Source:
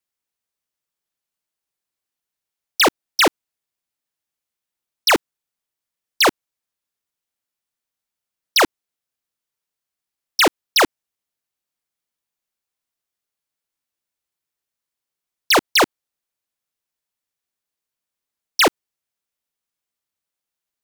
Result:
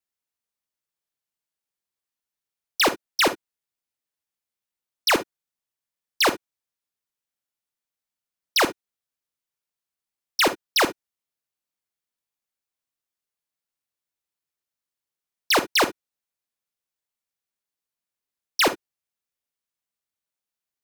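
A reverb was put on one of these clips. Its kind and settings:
reverb whose tail is shaped and stops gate 80 ms rising, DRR 11 dB
level −5 dB

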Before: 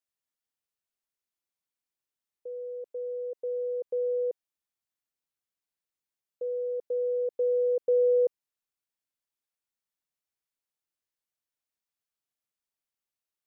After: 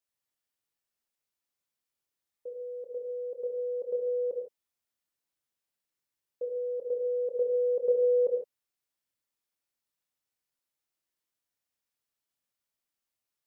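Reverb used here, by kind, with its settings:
reverb whose tail is shaped and stops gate 180 ms flat, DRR 1 dB

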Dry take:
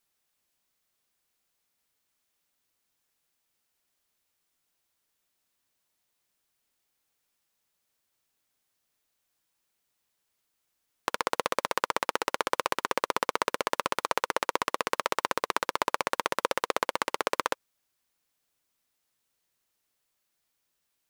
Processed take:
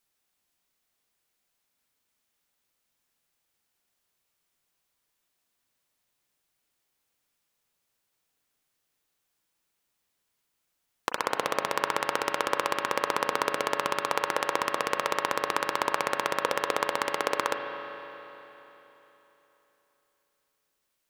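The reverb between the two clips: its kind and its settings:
spring reverb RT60 3.6 s, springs 35/39 ms, chirp 65 ms, DRR 4.5 dB

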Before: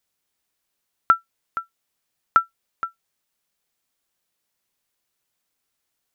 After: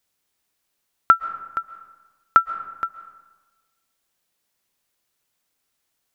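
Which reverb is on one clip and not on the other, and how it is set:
comb and all-pass reverb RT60 1.3 s, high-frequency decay 0.55×, pre-delay 95 ms, DRR 14 dB
level +2.5 dB

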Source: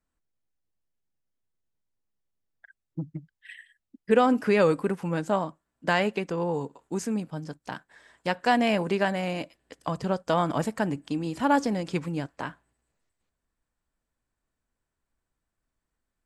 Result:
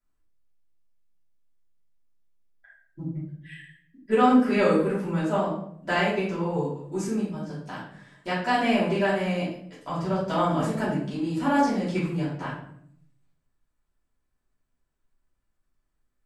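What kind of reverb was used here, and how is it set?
rectangular room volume 110 cubic metres, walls mixed, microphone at 2.9 metres
level −10 dB

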